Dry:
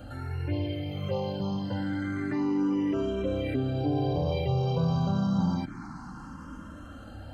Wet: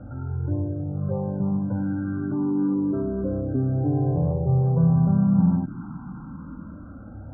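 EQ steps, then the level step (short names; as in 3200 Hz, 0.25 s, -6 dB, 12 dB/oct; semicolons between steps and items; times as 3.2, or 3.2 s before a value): brick-wall FIR low-pass 1600 Hz; air absorption 470 m; bell 160 Hz +9 dB 1.6 oct; 0.0 dB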